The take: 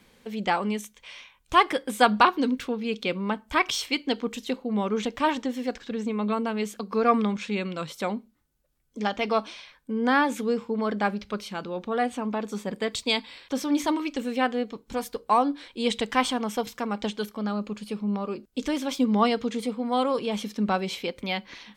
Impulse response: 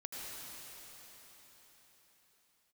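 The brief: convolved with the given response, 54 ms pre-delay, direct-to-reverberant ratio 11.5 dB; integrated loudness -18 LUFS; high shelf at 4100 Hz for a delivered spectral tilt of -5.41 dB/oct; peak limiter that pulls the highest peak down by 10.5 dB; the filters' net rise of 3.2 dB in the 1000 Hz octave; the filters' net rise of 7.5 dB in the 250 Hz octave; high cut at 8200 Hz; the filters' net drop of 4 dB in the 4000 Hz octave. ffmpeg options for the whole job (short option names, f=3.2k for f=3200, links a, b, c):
-filter_complex "[0:a]lowpass=8.2k,equalizer=f=250:t=o:g=8.5,equalizer=f=1k:t=o:g=3.5,equalizer=f=4k:t=o:g=-9,highshelf=f=4.1k:g=6,alimiter=limit=-14dB:level=0:latency=1,asplit=2[a][b];[1:a]atrim=start_sample=2205,adelay=54[c];[b][c]afir=irnorm=-1:irlink=0,volume=-11.5dB[d];[a][d]amix=inputs=2:normalize=0,volume=6.5dB"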